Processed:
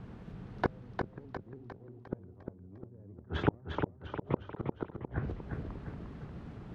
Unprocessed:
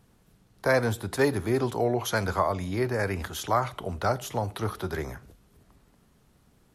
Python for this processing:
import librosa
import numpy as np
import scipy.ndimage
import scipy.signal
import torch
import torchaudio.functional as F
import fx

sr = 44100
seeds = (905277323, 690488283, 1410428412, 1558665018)

y = np.minimum(x, 2.0 * 10.0 ** (-22.5 / 20.0) - x)
y = fx.highpass(y, sr, hz=78.0, slope=6)
y = fx.env_lowpass_down(y, sr, base_hz=320.0, full_db=-27.0)
y = scipy.signal.sosfilt(scipy.signal.butter(2, 2500.0, 'lowpass', fs=sr, output='sos'), y)
y = fx.low_shelf(y, sr, hz=390.0, db=7.5)
y = fx.gate_flip(y, sr, shuts_db=-24.0, range_db=-37)
y = fx.echo_feedback(y, sr, ms=353, feedback_pct=48, wet_db=-5.0)
y = fx.vibrato_shape(y, sr, shape='saw_up', rate_hz=3.2, depth_cents=100.0)
y = y * 10.0 ** (10.5 / 20.0)